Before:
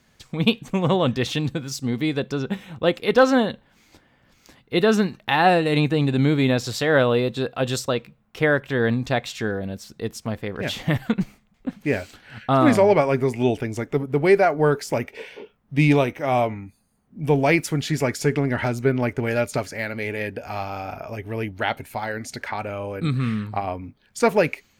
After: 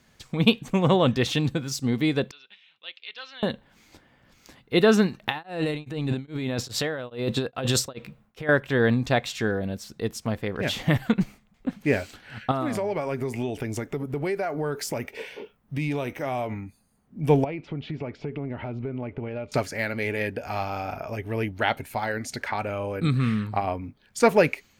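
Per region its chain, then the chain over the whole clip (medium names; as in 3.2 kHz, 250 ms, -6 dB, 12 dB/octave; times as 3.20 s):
2.31–3.43 s: Butterworth band-pass 3.5 kHz, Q 1.5 + tilt EQ -4.5 dB/octave
5.23–8.49 s: compressor with a negative ratio -26 dBFS + tremolo of two beating tones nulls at 2.4 Hz
12.51–16.61 s: treble shelf 11 kHz +7.5 dB + compression 5:1, threshold -25 dBFS
17.44–19.52 s: compression, threshold -28 dBFS + low-pass 2.9 kHz 24 dB/octave + peaking EQ 1.7 kHz -11.5 dB 0.7 oct
whole clip: none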